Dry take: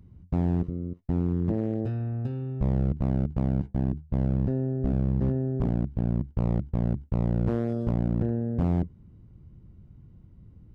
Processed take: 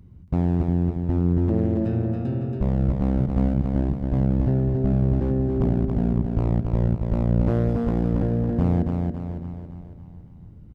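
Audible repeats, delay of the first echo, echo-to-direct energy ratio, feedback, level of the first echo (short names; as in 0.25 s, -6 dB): 9, 0.278 s, -2.5 dB, no steady repeat, -4.0 dB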